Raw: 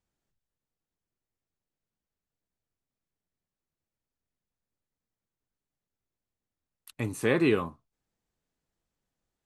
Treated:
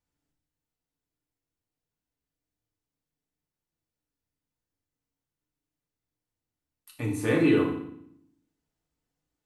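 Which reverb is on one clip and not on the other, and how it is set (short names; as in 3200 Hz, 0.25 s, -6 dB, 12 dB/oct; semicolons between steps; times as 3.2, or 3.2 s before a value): FDN reverb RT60 0.69 s, low-frequency decay 1.45×, high-frequency decay 0.95×, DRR -2.5 dB; gain -4.5 dB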